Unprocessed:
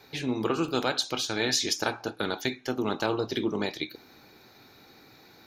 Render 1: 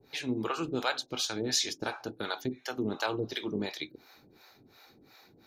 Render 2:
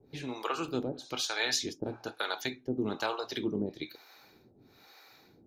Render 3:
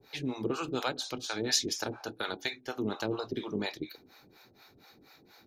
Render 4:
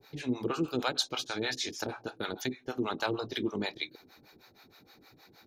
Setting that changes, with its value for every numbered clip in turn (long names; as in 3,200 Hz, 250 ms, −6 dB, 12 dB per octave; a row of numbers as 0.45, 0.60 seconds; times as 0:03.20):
two-band tremolo in antiphase, speed: 2.8, 1.1, 4.2, 6.4 Hertz